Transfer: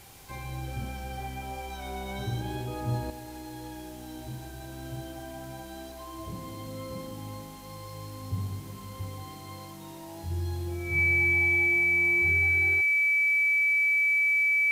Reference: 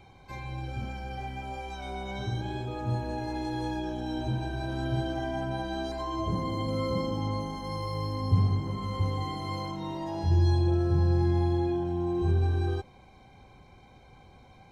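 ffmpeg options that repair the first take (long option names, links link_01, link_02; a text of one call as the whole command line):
ffmpeg -i in.wav -af "adeclick=threshold=4,bandreject=frequency=2300:width=30,afwtdn=0.0025,asetnsamples=nb_out_samples=441:pad=0,asendcmd='3.1 volume volume 9dB',volume=0dB" out.wav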